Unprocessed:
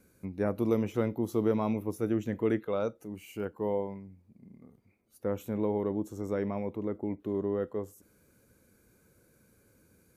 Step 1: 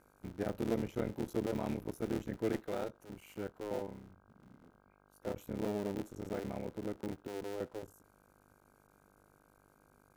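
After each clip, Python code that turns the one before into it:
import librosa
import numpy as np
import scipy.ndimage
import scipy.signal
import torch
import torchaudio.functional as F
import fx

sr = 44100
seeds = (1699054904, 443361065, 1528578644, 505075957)

y = fx.cycle_switch(x, sr, every=3, mode='muted')
y = fx.notch(y, sr, hz=1100.0, q=7.4)
y = fx.dmg_buzz(y, sr, base_hz=50.0, harmonics=32, level_db=-63.0, tilt_db=-1, odd_only=False)
y = F.gain(torch.from_numpy(y), -5.5).numpy()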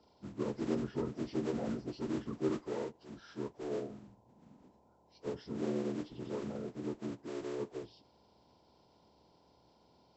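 y = fx.partial_stretch(x, sr, pct=77)
y = F.gain(torch.from_numpy(y), 2.0).numpy()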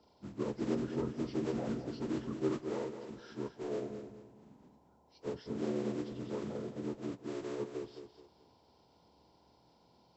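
y = fx.echo_feedback(x, sr, ms=214, feedback_pct=34, wet_db=-9.0)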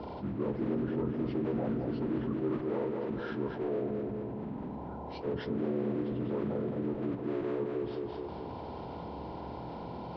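y = fx.air_absorb(x, sr, metres=480.0)
y = fx.env_flatten(y, sr, amount_pct=70)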